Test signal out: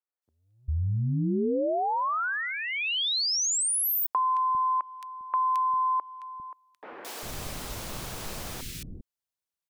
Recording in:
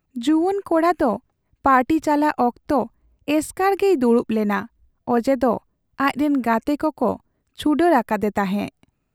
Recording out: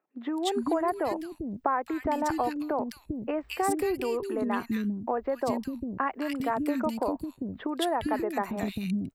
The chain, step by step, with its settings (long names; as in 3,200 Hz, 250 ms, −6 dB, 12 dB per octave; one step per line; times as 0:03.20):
downward compressor, threshold −23 dBFS
three-band delay without the direct sound mids, highs, lows 220/400 ms, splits 310/2,000 Hz